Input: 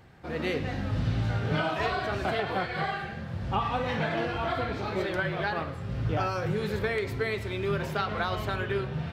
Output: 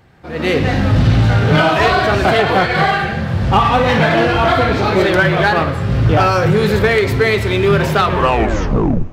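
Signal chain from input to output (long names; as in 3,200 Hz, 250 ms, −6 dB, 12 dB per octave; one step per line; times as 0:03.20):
turntable brake at the end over 1.16 s
automatic gain control gain up to 14.5 dB
in parallel at −3.5 dB: hard clipping −16 dBFS, distortion −9 dB
on the sum: four-comb reverb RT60 2.3 s, DRR 19.5 dB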